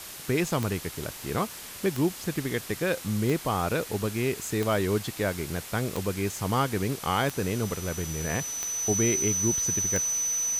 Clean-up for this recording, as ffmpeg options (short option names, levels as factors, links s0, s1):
-af "adeclick=t=4,bandreject=f=6000:w=30,afwtdn=0.01"